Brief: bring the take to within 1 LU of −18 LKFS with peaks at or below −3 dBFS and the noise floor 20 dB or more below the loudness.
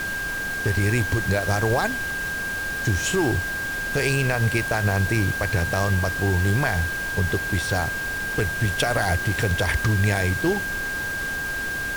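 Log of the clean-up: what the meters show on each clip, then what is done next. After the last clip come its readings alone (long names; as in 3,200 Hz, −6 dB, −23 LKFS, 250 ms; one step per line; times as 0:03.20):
interfering tone 1,600 Hz; level of the tone −26 dBFS; background noise floor −28 dBFS; target noise floor −43 dBFS; integrated loudness −23.0 LKFS; sample peak −9.5 dBFS; target loudness −18.0 LKFS
→ notch filter 1,600 Hz, Q 30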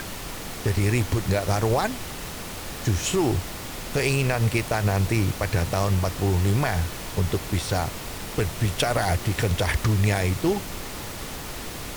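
interfering tone none found; background noise floor −35 dBFS; target noise floor −46 dBFS
→ noise reduction from a noise print 11 dB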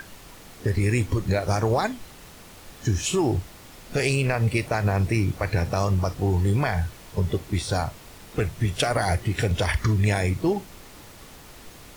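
background noise floor −46 dBFS; integrated loudness −25.0 LKFS; sample peak −10.5 dBFS; target loudness −18.0 LKFS
→ level +7 dB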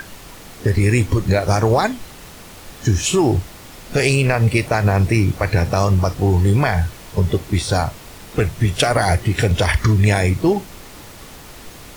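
integrated loudness −18.0 LKFS; sample peak −3.5 dBFS; background noise floor −39 dBFS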